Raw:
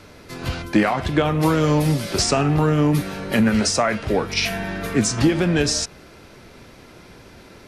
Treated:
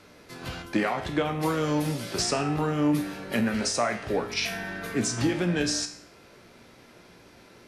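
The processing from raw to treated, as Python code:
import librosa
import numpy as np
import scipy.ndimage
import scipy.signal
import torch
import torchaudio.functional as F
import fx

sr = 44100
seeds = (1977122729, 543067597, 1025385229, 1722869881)

y = fx.low_shelf(x, sr, hz=90.0, db=-11.0)
y = fx.comb_fb(y, sr, f0_hz=59.0, decay_s=0.54, harmonics='all', damping=0.0, mix_pct=70)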